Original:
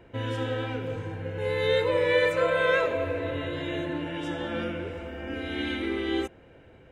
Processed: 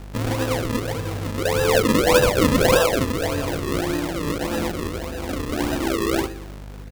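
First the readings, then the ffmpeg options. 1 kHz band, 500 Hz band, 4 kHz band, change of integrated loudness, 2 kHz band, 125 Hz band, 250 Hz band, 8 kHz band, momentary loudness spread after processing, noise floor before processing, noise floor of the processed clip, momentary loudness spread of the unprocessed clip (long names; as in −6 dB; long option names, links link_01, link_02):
+8.5 dB, +5.0 dB, +7.5 dB, +6.5 dB, +3.5 dB, +9.0 dB, +9.5 dB, can't be measured, 12 LU, −53 dBFS, −36 dBFS, 12 LU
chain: -filter_complex "[0:a]asplit=2[link_01][link_02];[link_02]adelay=120,lowpass=frequency=1400:poles=1,volume=-13dB,asplit=2[link_03][link_04];[link_04]adelay=120,lowpass=frequency=1400:poles=1,volume=0.49,asplit=2[link_05][link_06];[link_06]adelay=120,lowpass=frequency=1400:poles=1,volume=0.49,asplit=2[link_07][link_08];[link_08]adelay=120,lowpass=frequency=1400:poles=1,volume=0.49,asplit=2[link_09][link_10];[link_10]adelay=120,lowpass=frequency=1400:poles=1,volume=0.49[link_11];[link_01][link_03][link_05][link_07][link_09][link_11]amix=inputs=6:normalize=0,aeval=exprs='val(0)+0.00794*(sin(2*PI*50*n/s)+sin(2*PI*2*50*n/s)/2+sin(2*PI*3*50*n/s)/3+sin(2*PI*4*50*n/s)/4+sin(2*PI*5*50*n/s)/5)':channel_layout=same,acrusher=samples=40:mix=1:aa=0.000001:lfo=1:lforange=40:lforate=1.7,volume=6.5dB"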